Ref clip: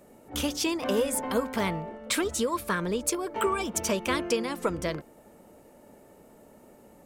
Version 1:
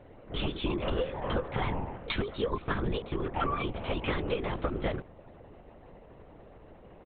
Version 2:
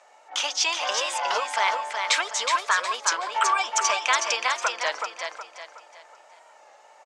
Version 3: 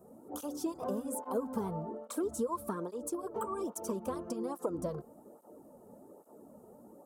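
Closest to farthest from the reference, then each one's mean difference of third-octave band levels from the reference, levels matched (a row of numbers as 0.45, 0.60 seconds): 3, 1, 2; 6.5, 10.0, 13.5 decibels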